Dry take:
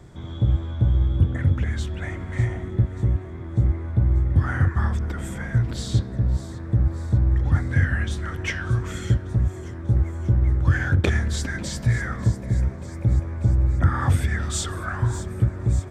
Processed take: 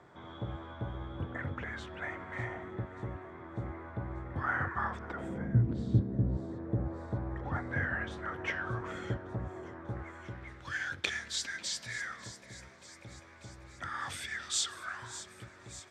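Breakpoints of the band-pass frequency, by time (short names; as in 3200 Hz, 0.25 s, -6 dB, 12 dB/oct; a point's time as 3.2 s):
band-pass, Q 0.95
5.07 s 1100 Hz
5.49 s 250 Hz
6.04 s 250 Hz
7.21 s 820 Hz
9.69 s 820 Hz
10.74 s 4200 Hz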